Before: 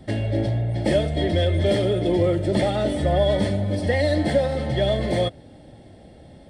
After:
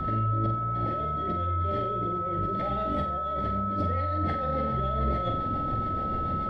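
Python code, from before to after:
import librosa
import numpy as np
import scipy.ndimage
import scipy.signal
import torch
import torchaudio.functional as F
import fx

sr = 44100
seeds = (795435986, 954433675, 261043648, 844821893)

y = fx.tracing_dist(x, sr, depth_ms=0.027)
y = scipy.signal.sosfilt(scipy.signal.butter(2, 2800.0, 'lowpass', fs=sr, output='sos'), y)
y = fx.low_shelf(y, sr, hz=82.0, db=9.0)
y = fx.over_compress(y, sr, threshold_db=-31.0, ratio=-1.0)
y = fx.rotary_switch(y, sr, hz=1.1, then_hz=7.0, switch_at_s=2.09)
y = y + 10.0 ** (-31.0 / 20.0) * np.sin(2.0 * np.pi * 1300.0 * np.arange(len(y)) / sr)
y = fx.room_flutter(y, sr, wall_m=7.8, rt60_s=0.48)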